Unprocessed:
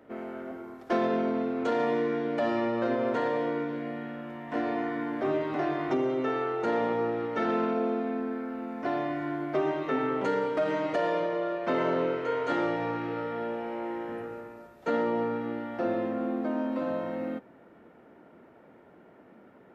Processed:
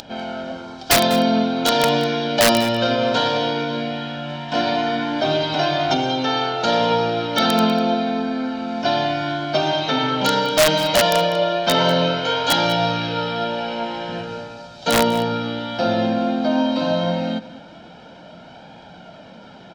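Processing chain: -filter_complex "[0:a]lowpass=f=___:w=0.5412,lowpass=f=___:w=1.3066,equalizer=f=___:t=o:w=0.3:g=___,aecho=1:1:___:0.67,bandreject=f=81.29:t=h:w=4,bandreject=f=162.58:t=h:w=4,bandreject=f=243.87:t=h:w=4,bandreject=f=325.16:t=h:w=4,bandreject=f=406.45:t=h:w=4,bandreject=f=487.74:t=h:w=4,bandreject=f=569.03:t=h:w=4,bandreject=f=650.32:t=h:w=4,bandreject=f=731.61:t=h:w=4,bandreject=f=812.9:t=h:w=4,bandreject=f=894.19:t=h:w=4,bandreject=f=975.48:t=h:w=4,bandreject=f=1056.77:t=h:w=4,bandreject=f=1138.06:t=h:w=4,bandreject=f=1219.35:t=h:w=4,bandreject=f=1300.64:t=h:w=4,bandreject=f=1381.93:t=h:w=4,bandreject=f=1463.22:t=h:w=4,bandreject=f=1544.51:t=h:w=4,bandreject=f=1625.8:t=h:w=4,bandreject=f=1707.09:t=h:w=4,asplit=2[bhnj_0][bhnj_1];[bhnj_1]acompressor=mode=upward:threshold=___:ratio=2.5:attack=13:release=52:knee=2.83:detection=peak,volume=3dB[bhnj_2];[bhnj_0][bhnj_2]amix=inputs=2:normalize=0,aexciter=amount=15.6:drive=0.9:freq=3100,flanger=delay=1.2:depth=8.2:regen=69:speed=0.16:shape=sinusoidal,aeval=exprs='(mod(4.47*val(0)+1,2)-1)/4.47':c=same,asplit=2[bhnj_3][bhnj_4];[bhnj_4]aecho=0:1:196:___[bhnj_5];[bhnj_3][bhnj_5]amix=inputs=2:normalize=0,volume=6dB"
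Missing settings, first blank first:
4800, 4800, 170, 7, 1.3, -45dB, 0.15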